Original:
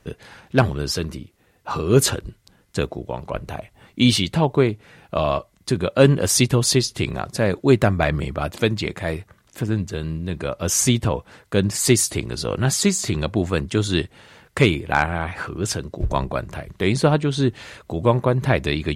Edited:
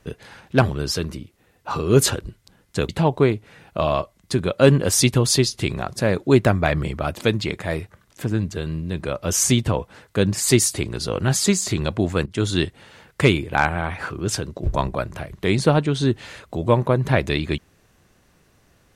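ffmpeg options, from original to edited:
-filter_complex "[0:a]asplit=3[a][b][c];[a]atrim=end=2.892[d];[b]atrim=start=4.258:end=13.63,asetpts=PTS-STARTPTS,afade=t=out:st=9.368:d=0.004:c=hsin:silence=0.11885[e];[c]atrim=start=13.63,asetpts=PTS-STARTPTS,afade=t=in:d=0.25:c=qsin:silence=0.11885[f];[e][f]concat=n=2:v=0:a=1[g];[d][g]acrossfade=d=0.004:c1=hsin:c2=hsin"

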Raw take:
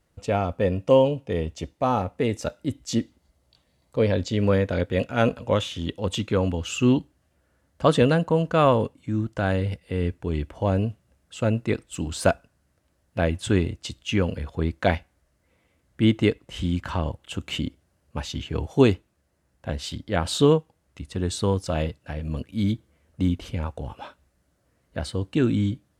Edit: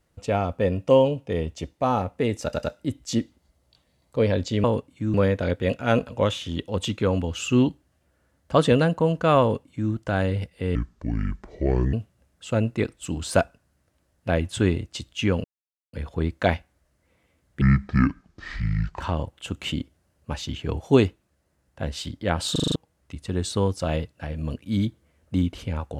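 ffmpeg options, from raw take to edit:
-filter_complex "[0:a]asplit=16[a][b][c][d][e][f][g][h][i][j][k][l][m][n][o][p];[a]atrim=end=2.532[q];[b]atrim=start=2.428:end=2.532[r];[c]atrim=start=2.428:end=4.442[s];[d]atrim=start=8.708:end=9.212[t];[e]atrim=start=4.438:end=10.054[u];[f]atrim=start=10.05:end=10.83,asetpts=PTS-STARTPTS,asetrate=29106,aresample=44100,atrim=end_sample=52118,asetpts=PTS-STARTPTS[v];[g]atrim=start=10.826:end=14.34,asetpts=PTS-STARTPTS,afade=t=out:st=3.51:d=0.004:c=hsin,apad=pad_dur=0.49[w];[h]atrim=start=14.34:end=16.024,asetpts=PTS-STARTPTS,afade=t=in:d=0.004:c=hsin[x];[i]atrim=start=16.02:end=16.87,asetpts=PTS-STARTPTS,asetrate=26901,aresample=44100[y];[j]atrim=start=16.866:end=20.422[z];[k]atrim=start=20.378:end=20.422[aa];[l]atrim=start=20.378:end=20.422[ab];[m]atrim=start=20.378:end=20.422[ac];[n]atrim=start=20.378:end=20.422[ad];[o]atrim=start=20.378:end=20.422[ae];[p]atrim=start=20.618[af];[q][r]acrossfade=d=0.004:c1=hsin:c2=hsin[ag];[ag][s]acrossfade=d=0.004:c1=hsin:c2=hsin[ah];[ah][t]acrossfade=d=0.004:c1=hsin:c2=hsin[ai];[ai][u]acrossfade=d=0.004:c1=hsin:c2=hsin[aj];[aj][v]acrossfade=d=0.004:c1=hsin:c2=hsin[ak];[w][x]concat=n=2:v=0:a=1[al];[ak][al]acrossfade=d=0.004:c1=hsin:c2=hsin[am];[am][y]acrossfade=d=0.004:c1=hsin:c2=hsin[an];[an][z]acrossfade=d=0.004:c1=hsin:c2=hsin[ao];[ao][aa]acrossfade=d=0.004:c1=hsin:c2=hsin[ap];[ap][ab]acrossfade=d=0.004:c1=hsin:c2=hsin[aq];[aq][ac]acrossfade=d=0.004:c1=hsin:c2=hsin[ar];[ar][ad]acrossfade=d=0.004:c1=hsin:c2=hsin[as];[as][ae]acrossfade=d=0.004:c1=hsin:c2=hsin[at];[at][af]acrossfade=d=0.004:c1=hsin:c2=hsin"

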